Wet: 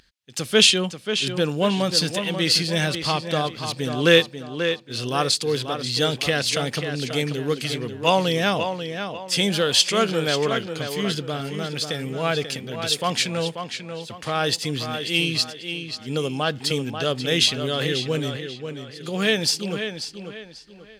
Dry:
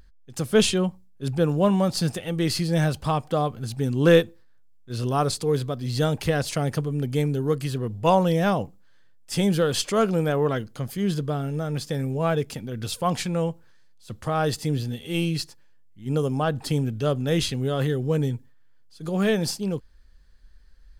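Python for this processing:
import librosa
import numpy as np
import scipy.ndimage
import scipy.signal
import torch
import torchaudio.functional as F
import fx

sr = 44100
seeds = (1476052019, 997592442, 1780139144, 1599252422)

y = fx.weighting(x, sr, curve='D')
y = fx.echo_tape(y, sr, ms=539, feedback_pct=36, wet_db=-7, lp_hz=4600.0, drive_db=2.0, wow_cents=26)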